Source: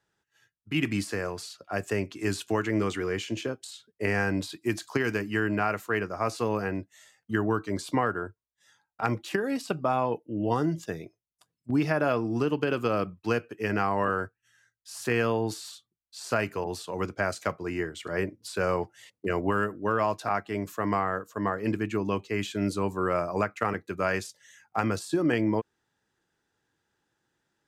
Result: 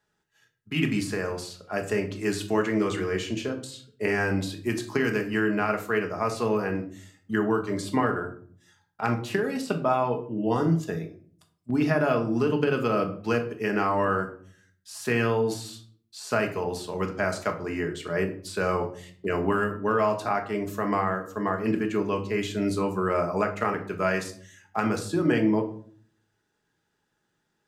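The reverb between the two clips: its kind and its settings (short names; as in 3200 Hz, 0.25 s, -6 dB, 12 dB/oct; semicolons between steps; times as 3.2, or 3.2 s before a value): shoebox room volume 580 m³, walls furnished, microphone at 1.4 m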